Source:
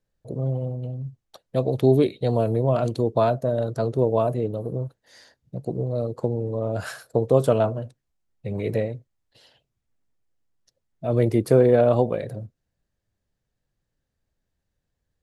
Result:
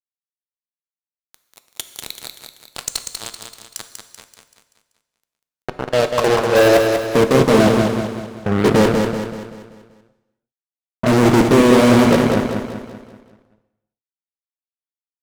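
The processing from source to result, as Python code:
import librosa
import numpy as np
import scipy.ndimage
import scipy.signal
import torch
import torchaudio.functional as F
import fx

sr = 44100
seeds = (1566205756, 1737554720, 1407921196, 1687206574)

p1 = fx.high_shelf(x, sr, hz=4600.0, db=8.0)
p2 = fx.level_steps(p1, sr, step_db=13)
p3 = fx.filter_sweep_bandpass(p2, sr, from_hz=7300.0, to_hz=260.0, start_s=5.16, end_s=7.01, q=2.0)
p4 = fx.fuzz(p3, sr, gain_db=48.0, gate_db=-46.0)
p5 = p4 + fx.echo_feedback(p4, sr, ms=192, feedback_pct=46, wet_db=-5.5, dry=0)
p6 = fx.rev_gated(p5, sr, seeds[0], gate_ms=420, shape='falling', drr_db=10.0)
y = F.gain(torch.from_numpy(p6), 3.0).numpy()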